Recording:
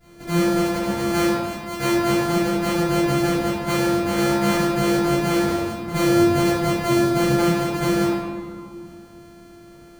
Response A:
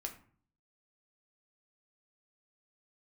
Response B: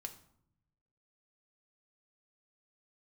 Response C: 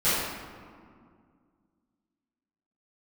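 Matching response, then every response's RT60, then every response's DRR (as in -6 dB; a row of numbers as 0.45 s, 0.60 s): C; 0.50 s, 0.70 s, 2.1 s; 2.5 dB, 4.5 dB, -17.0 dB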